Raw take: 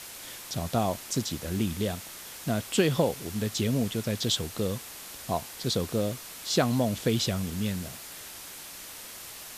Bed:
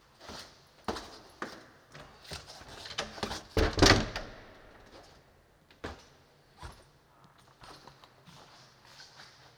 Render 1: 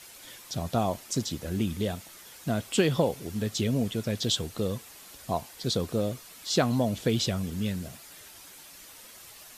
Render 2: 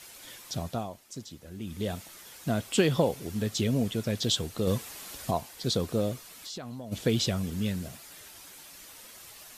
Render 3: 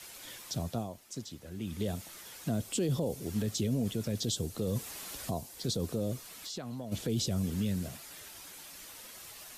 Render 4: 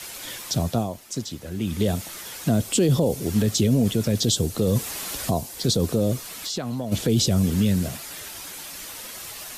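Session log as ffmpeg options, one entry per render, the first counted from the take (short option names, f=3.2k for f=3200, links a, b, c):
-af "afftdn=nr=8:nf=-44"
-filter_complex "[0:a]asettb=1/sr,asplit=3[a][b][c];[a]atrim=end=4.674[d];[b]atrim=start=4.67:end=5.31,asetpts=PTS-STARTPTS,afade=t=in:d=0.004:c=qsin,afade=t=out:st=0.636:d=0.004:c=qsin,acontrast=34[e];[c]atrim=start=5.306[f];[d][e]acrossfade=d=0.004:c1=hsin:c2=qsin[g];[g][f]acrossfade=d=0.004:c1=qsin:c2=hsin,asplit=3[h][i][j];[h]afade=t=out:st=6.34:d=0.02[k];[i]acompressor=threshold=-38dB:ratio=5:attack=3.2:release=140:knee=1:detection=peak,afade=t=in:st=6.34:d=0.02,afade=t=out:st=6.91:d=0.02[l];[j]afade=t=in:st=6.91:d=0.02[m];[k][l][m]amix=inputs=3:normalize=0,asplit=3[n][o][p];[n]atrim=end=0.89,asetpts=PTS-STARTPTS,afade=t=out:st=0.52:d=0.37:silence=0.251189[q];[o]atrim=start=0.89:end=1.6,asetpts=PTS-STARTPTS,volume=-12dB[r];[p]atrim=start=1.6,asetpts=PTS-STARTPTS,afade=t=in:d=0.37:silence=0.251189[s];[q][r][s]concat=n=3:v=0:a=1"
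-filter_complex "[0:a]acrossover=split=130|590|4700[a][b][c][d];[c]acompressor=threshold=-45dB:ratio=6[e];[a][b][e][d]amix=inputs=4:normalize=0,alimiter=limit=-23dB:level=0:latency=1:release=14"
-af "volume=11.5dB"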